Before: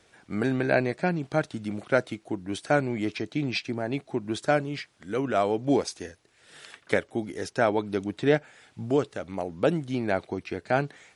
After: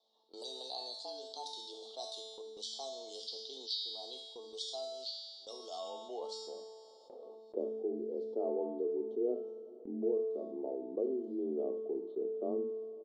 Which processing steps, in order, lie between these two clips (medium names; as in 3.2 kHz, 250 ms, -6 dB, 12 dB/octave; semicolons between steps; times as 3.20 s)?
gliding tape speed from 100% -> 71%; elliptic band-stop 890–3500 Hz, stop band 40 dB; hum notches 50/100/150 Hz; level-controlled noise filter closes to 1.3 kHz, open at -24.5 dBFS; peaking EQ 870 Hz -9.5 dB 0.25 oct; band-pass sweep 4.3 kHz -> 250 Hz, 5.71–7.36 s; frequency shift +130 Hz; gate with hold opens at -56 dBFS; feedback comb 220 Hz, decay 0.9 s, mix 90%; delay 72 ms -15.5 dB; two-slope reverb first 0.35 s, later 4.5 s, from -22 dB, DRR 18.5 dB; level flattener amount 50%; trim +9 dB